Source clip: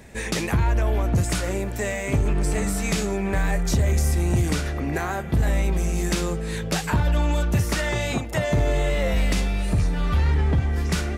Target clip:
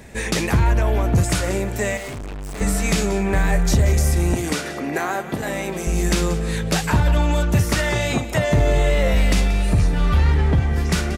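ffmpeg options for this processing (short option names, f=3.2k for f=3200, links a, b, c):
-filter_complex "[0:a]asettb=1/sr,asplit=3[a][b][c];[a]atrim=end=4.344[d];[b]atrim=start=4.34:end=5.87,asetpts=PTS-STARTPTS,afade=t=in:d=0.004:c=qsin,afade=t=out:st=1.526:d=0.004:c=qsin,highpass=240[e];[c]atrim=start=5.866[f];[d][e]acrossfade=d=0.004:c1=hsin:c2=qsin[g];[g][f]acrossfade=d=0.004:c1=qsin:c2=hsin,aecho=1:1:182:0.188,asettb=1/sr,asplit=3[h][i][j];[h]atrim=end=1.974[k];[i]atrim=start=1.97:end=2.61,asetpts=PTS-STARTPTS,afade=t=in:d=0.004:c=qsin,afade=t=out:st=0.636:d=0.004:c=qsin,volume=33.5dB,asoftclip=hard,volume=-33.5dB[l];[j]atrim=start=2.606[m];[k][l]acrossfade=d=0.004:c1=hsin:c2=qsin[n];[n][m]acrossfade=d=0.004:c1=qsin:c2=hsin,volume=4dB"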